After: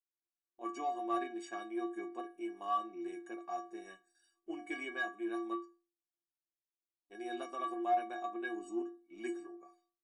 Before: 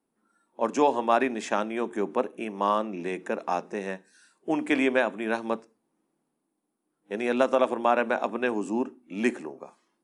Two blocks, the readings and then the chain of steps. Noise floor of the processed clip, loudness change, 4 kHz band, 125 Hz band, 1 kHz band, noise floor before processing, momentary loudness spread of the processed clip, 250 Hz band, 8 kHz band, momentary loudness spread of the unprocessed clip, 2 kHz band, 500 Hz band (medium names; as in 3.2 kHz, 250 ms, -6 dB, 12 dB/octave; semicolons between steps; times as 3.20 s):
under -85 dBFS, -12.5 dB, -13.0 dB, under -25 dB, -10.0 dB, -79 dBFS, 12 LU, -12.0 dB, -13.5 dB, 11 LU, -12.5 dB, -15.5 dB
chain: gate with hold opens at -50 dBFS; inharmonic resonator 340 Hz, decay 0.39 s, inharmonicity 0.03; in parallel at -8 dB: saturation -32.5 dBFS, distortion -13 dB